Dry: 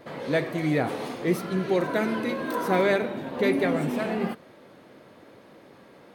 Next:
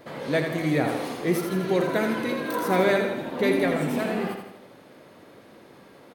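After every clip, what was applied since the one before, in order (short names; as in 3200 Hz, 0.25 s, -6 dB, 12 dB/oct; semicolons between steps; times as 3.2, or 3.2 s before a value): high shelf 6300 Hz +5.5 dB; feedback echo 82 ms, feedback 50%, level -6.5 dB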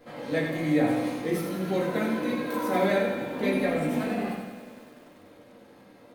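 shoebox room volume 170 m³, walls furnished, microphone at 2.1 m; lo-fi delay 98 ms, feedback 80%, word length 7-bit, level -13.5 dB; gain -8.5 dB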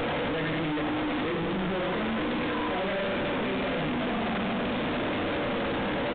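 infinite clipping; downsampling 8000 Hz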